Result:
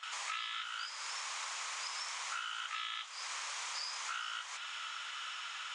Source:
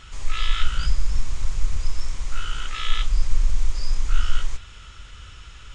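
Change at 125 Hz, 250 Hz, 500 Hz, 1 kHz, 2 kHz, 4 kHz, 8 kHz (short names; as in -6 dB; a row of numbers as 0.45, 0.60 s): under -40 dB, under -30 dB, -11.5 dB, -3.0 dB, -3.5 dB, -5.0 dB, n/a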